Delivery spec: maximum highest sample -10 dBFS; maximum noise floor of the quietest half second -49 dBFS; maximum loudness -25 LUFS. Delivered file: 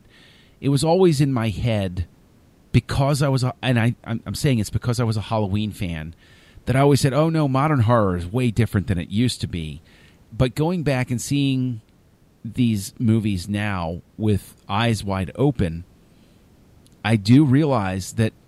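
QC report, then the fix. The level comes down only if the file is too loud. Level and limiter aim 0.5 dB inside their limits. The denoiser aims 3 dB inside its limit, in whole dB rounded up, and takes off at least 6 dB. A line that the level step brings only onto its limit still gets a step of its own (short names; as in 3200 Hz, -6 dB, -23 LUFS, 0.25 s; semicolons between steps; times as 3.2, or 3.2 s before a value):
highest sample -3.5 dBFS: fail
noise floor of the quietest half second -55 dBFS: OK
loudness -21.0 LUFS: fail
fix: gain -4.5 dB; limiter -10.5 dBFS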